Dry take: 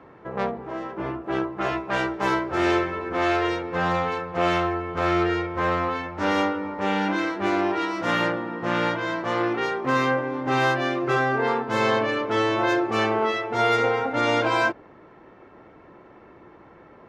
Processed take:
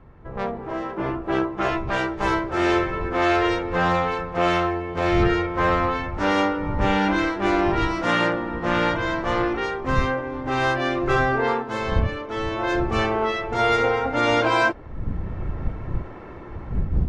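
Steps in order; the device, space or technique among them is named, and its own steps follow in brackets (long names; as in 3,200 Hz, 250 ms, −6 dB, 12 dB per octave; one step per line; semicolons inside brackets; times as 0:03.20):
0:04.71–0:05.23: parametric band 1,300 Hz −8 dB 0.4 octaves
smartphone video outdoors (wind on the microphone 89 Hz −30 dBFS; automatic gain control gain up to 16.5 dB; level −7 dB; AAC 64 kbit/s 24,000 Hz)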